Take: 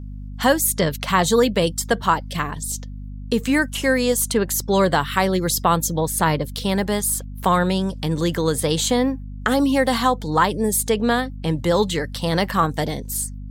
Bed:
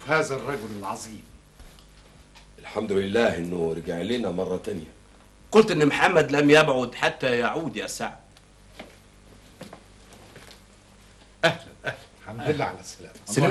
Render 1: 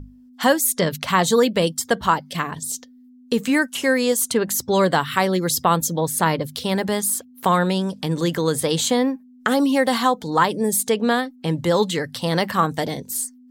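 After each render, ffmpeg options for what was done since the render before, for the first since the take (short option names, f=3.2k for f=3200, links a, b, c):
-af "bandreject=f=50:t=h:w=6,bandreject=f=100:t=h:w=6,bandreject=f=150:t=h:w=6,bandreject=f=200:t=h:w=6"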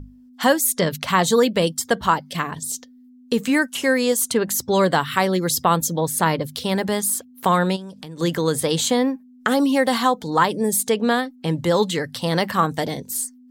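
-filter_complex "[0:a]asplit=3[a][b][c];[a]afade=t=out:st=7.75:d=0.02[d];[b]acompressor=threshold=-37dB:ratio=3:attack=3.2:release=140:knee=1:detection=peak,afade=t=in:st=7.75:d=0.02,afade=t=out:st=8.19:d=0.02[e];[c]afade=t=in:st=8.19:d=0.02[f];[d][e][f]amix=inputs=3:normalize=0"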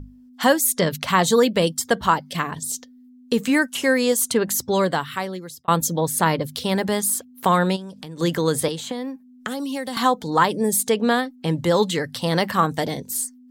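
-filter_complex "[0:a]asettb=1/sr,asplit=3[a][b][c];[a]atrim=end=8.684[d];[b]atrim=start=8.68:end=9.97,asetpts=PTS-STARTPTS,afade=t=in:d=0.004:c=qsin,afade=t=out:st=1.286:d=0.004:c=qsin,acrossover=split=260|3000[e][f][g];[e]acompressor=threshold=-35dB:ratio=4[h];[f]acompressor=threshold=-31dB:ratio=4[i];[g]acompressor=threshold=-38dB:ratio=4[j];[h][i][j]amix=inputs=3:normalize=0[k];[c]atrim=start=9.966[l];[d][k]acrossfade=d=0.004:c1=hsin:c2=qsin[m];[m][l]acrossfade=d=0.004:c1=qsin:c2=hsin,asplit=2[n][o];[n]atrim=end=5.68,asetpts=PTS-STARTPTS,afade=t=out:st=4.53:d=1.15[p];[o]atrim=start=5.68,asetpts=PTS-STARTPTS,afade=t=in:d=0.004:c=hsin[q];[p][q]concat=n=2:v=0:a=1"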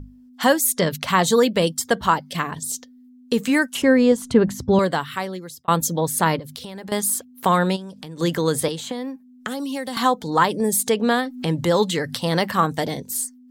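-filter_complex "[0:a]asettb=1/sr,asplit=3[a][b][c];[a]atrim=end=3.824[d];[b]atrim=start=3.82:end=4.79,asetpts=PTS-STARTPTS,afade=t=in:d=0.004:c=qsin,afade=t=out:st=0.966:d=0.004:c=qsin,aemphasis=mode=reproduction:type=riaa[e];[c]atrim=start=4.786[f];[d][e]acrossfade=d=0.004:c1=hsin:c2=qsin[g];[g][f]acrossfade=d=0.004:c1=qsin:c2=hsin,asettb=1/sr,asplit=3[h][i][j];[h]atrim=end=6.394[k];[i]atrim=start=6.39:end=6.92,asetpts=PTS-STARTPTS,afade=t=in:d=0.004:c=qsin,afade=t=out:st=0.526:d=0.004:c=qsin,acompressor=threshold=-31dB:ratio=16:attack=3.2:release=140:knee=1:detection=peak[l];[j]atrim=start=6.916[m];[k][l]acrossfade=d=0.004:c1=hsin:c2=qsin[n];[n][m]acrossfade=d=0.004:c1=qsin:c2=hsin,asettb=1/sr,asplit=3[o][p][q];[o]atrim=end=10.604[r];[p]atrim=start=10.6:end=12.17,asetpts=PTS-STARTPTS,afade=t=in:d=0.004:c=qsin,afade=t=out:st=1.566:d=0.004:c=qsin,acompressor=mode=upward:threshold=-20dB:ratio=2.5:attack=3.2:release=140:knee=2.83:detection=peak[s];[q]atrim=start=12.166[t];[r][s]acrossfade=d=0.004:c1=hsin:c2=qsin[u];[u][t]acrossfade=d=0.004:c1=qsin:c2=hsin"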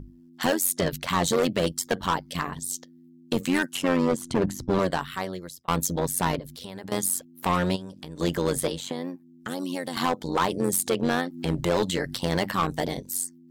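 -af "asoftclip=type=hard:threshold=-16dB,tremolo=f=90:d=0.824"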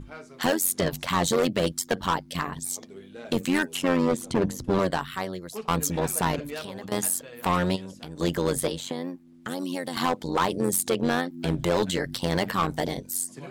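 -filter_complex "[1:a]volume=-21dB[a];[0:a][a]amix=inputs=2:normalize=0"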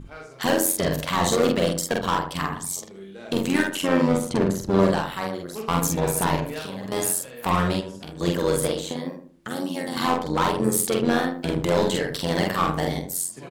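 -filter_complex "[0:a]asplit=2[a][b];[b]adelay=46,volume=-2dB[c];[a][c]amix=inputs=2:normalize=0,asplit=2[d][e];[e]adelay=77,lowpass=f=1.2k:p=1,volume=-6.5dB,asplit=2[f][g];[g]adelay=77,lowpass=f=1.2k:p=1,volume=0.36,asplit=2[h][i];[i]adelay=77,lowpass=f=1.2k:p=1,volume=0.36,asplit=2[j][k];[k]adelay=77,lowpass=f=1.2k:p=1,volume=0.36[l];[f][h][j][l]amix=inputs=4:normalize=0[m];[d][m]amix=inputs=2:normalize=0"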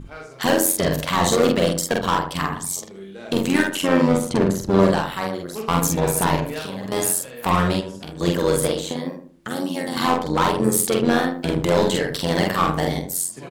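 -af "volume=3dB"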